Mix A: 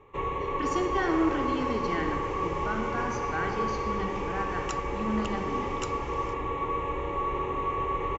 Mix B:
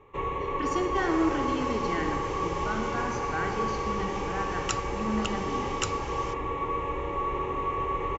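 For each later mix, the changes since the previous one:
second sound +8.0 dB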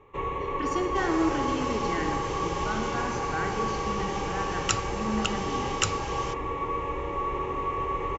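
second sound +5.0 dB

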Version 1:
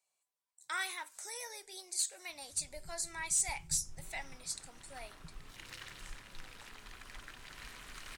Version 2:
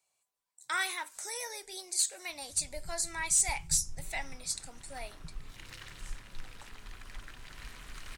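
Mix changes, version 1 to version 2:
speech +5.0 dB; master: add bass shelf 150 Hz +8.5 dB

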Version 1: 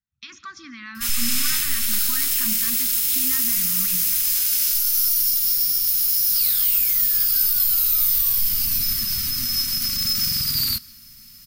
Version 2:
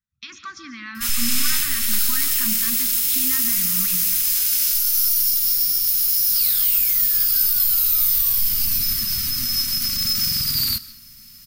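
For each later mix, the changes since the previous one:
speech: send +9.5 dB; first sound: send +8.5 dB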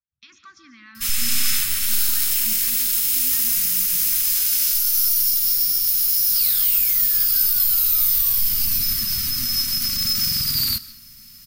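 speech -10.5 dB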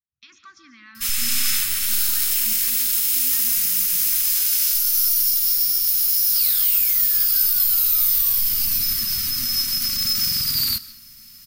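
master: add tone controls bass -4 dB, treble 0 dB

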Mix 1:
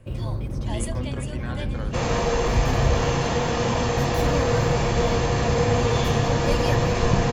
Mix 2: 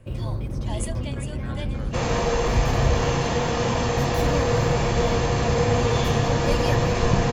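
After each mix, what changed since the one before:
speech -5.0 dB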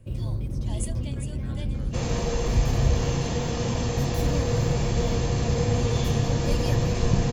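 master: add peaking EQ 1.2 kHz -10 dB 3 oct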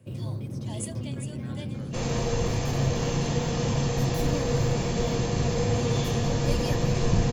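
first sound: add high-pass 110 Hz 24 dB/octave

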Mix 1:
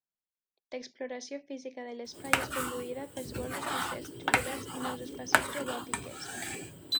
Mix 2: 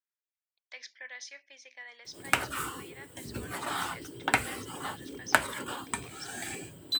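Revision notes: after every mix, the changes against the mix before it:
speech: add resonant high-pass 1.6 kHz, resonance Q 1.9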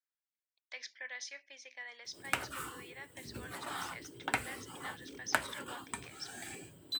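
background -7.5 dB

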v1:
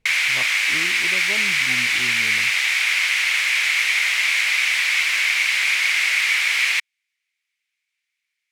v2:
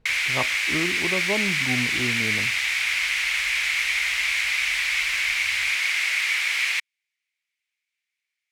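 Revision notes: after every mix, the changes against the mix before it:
speech +8.5 dB; background -4.5 dB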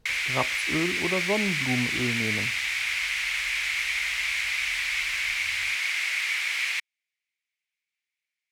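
speech: remove distance through air 200 m; background -4.0 dB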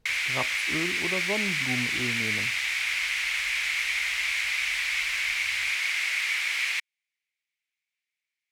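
speech -4.5 dB

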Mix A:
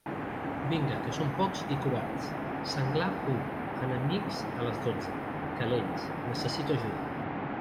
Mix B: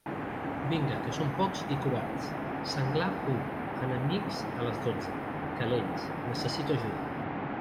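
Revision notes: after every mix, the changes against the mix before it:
no change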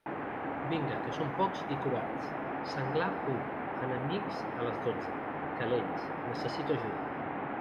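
master: add tone controls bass -8 dB, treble -15 dB

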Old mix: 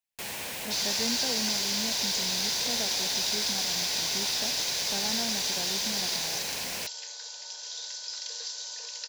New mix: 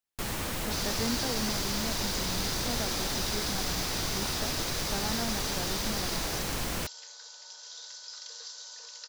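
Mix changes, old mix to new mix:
first sound: remove high-pass 540 Hz 6 dB/octave; second sound -6.5 dB; master: add graphic EQ with 31 bands 315 Hz +7 dB, 1.25 kHz +11 dB, 2.5 kHz -4 dB

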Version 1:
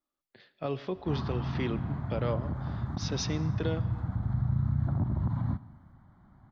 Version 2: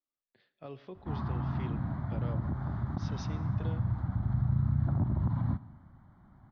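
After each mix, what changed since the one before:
speech -11.5 dB; master: add distance through air 67 m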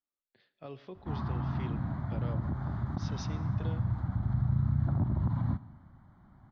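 master: add treble shelf 4.9 kHz +6 dB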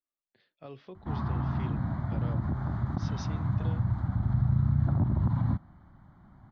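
background +3.5 dB; reverb: off

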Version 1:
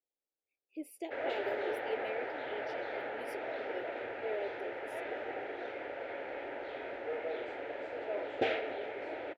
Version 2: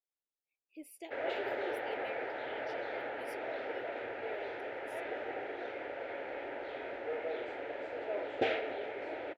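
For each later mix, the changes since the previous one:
speech: add peaking EQ 420 Hz -8 dB 1.9 oct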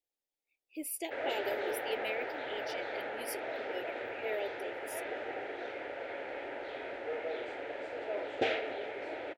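speech +7.5 dB; master: remove low-pass 3.2 kHz 6 dB/octave

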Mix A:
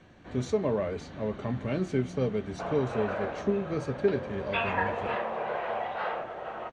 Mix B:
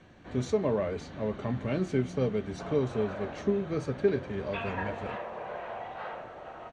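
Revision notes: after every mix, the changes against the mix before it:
background -9.0 dB; reverb: on, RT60 2.1 s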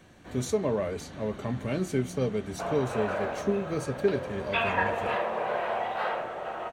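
background +8.5 dB; master: remove distance through air 120 m

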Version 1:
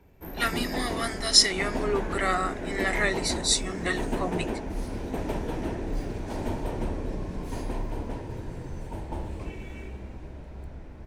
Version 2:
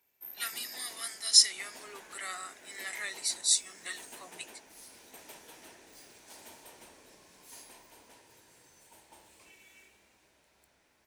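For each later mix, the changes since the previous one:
master: add differentiator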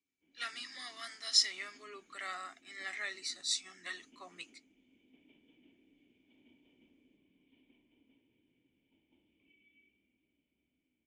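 speech: add distance through air 130 m; background: add cascade formant filter i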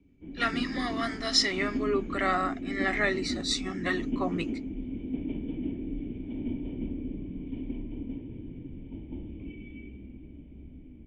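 background +5.0 dB; master: remove differentiator

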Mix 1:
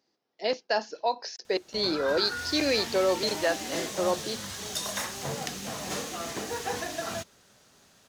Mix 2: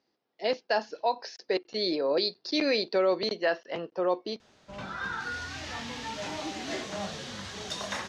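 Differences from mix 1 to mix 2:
background: entry +2.95 s; master: add low-pass 4.5 kHz 12 dB/octave

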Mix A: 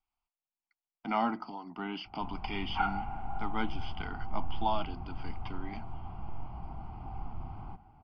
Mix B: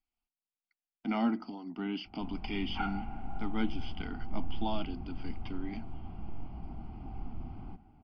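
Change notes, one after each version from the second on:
master: add graphic EQ 125/250/1000 Hz -4/+7/-10 dB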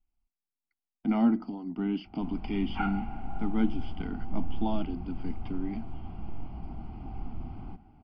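speech: add tilt EQ -3 dB/octave; background +3.0 dB

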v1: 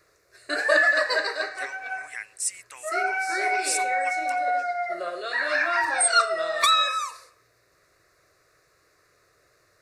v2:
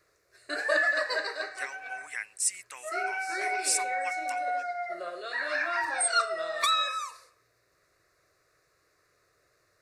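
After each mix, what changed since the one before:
background -6.0 dB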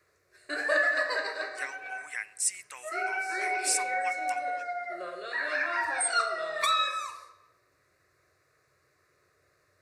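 reverb: on, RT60 1.1 s

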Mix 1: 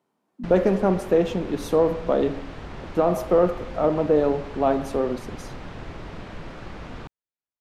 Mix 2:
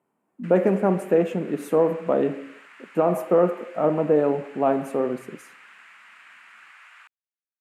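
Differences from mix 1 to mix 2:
background: add high-pass 1.4 kHz 24 dB/octave; master: add high-order bell 4.5 kHz -12 dB 1.1 oct

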